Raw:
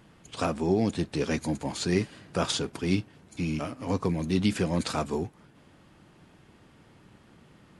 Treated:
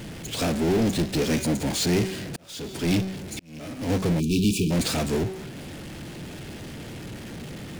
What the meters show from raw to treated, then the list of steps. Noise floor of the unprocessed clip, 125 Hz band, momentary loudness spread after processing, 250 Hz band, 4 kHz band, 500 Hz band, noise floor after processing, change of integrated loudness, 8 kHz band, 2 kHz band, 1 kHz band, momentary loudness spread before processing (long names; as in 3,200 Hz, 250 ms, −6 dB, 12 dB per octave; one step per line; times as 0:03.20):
−58 dBFS, +4.5 dB, 16 LU, +4.0 dB, +5.0 dB, +2.5 dB, −39 dBFS, +4.0 dB, +7.0 dB, +3.5 dB, −0.5 dB, 7 LU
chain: hum removal 189.8 Hz, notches 38
power curve on the samples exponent 0.35
parametric band 1,100 Hz −9 dB 0.94 octaves
volume swells 531 ms
time-frequency box erased 0:04.20–0:04.71, 460–2,300 Hz
expander for the loud parts 1.5 to 1, over −37 dBFS
level −2 dB